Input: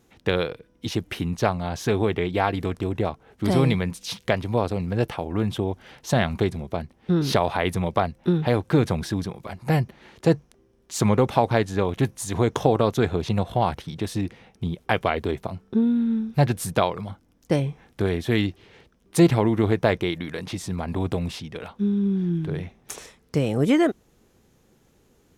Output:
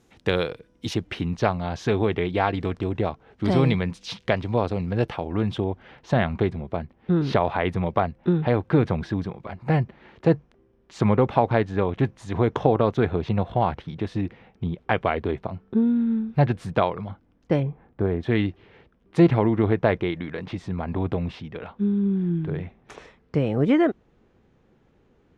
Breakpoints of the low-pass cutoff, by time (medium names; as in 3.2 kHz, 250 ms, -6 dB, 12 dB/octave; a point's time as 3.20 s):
10 kHz
from 0.94 s 4.4 kHz
from 5.64 s 2.6 kHz
from 17.63 s 1.2 kHz
from 18.23 s 2.5 kHz